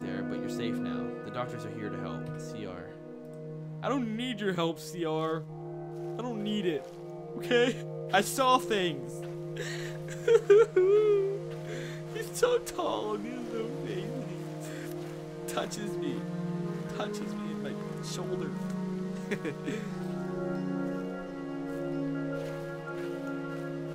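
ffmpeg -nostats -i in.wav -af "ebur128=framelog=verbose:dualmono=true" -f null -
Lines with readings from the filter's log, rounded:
Integrated loudness:
  I:         -29.2 LUFS
  Threshold: -39.3 LUFS
Loudness range:
  LRA:         9.2 LU
  Threshold: -49.0 LUFS
  LRA low:   -33.3 LUFS
  LRA high:  -24.1 LUFS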